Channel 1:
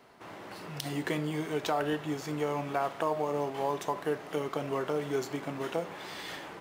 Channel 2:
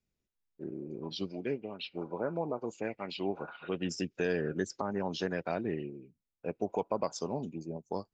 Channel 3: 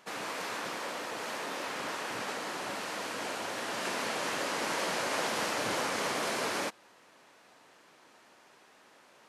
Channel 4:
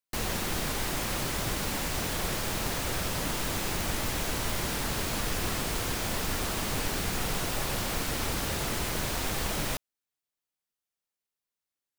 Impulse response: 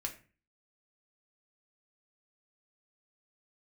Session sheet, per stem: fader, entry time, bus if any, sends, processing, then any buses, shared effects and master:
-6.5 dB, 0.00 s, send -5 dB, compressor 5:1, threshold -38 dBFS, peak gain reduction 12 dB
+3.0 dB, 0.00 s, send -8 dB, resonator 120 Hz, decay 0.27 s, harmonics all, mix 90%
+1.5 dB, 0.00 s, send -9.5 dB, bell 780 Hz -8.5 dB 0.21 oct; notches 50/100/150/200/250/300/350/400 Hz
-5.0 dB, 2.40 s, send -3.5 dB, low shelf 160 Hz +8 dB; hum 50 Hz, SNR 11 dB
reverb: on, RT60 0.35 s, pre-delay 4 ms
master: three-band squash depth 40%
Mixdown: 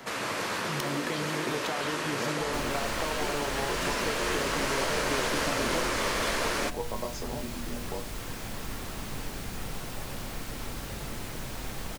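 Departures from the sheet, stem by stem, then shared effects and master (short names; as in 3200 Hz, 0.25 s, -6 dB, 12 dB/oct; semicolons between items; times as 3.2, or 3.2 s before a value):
stem 1 -6.5 dB -> +2.0 dB; stem 4 -5.0 dB -> -16.5 dB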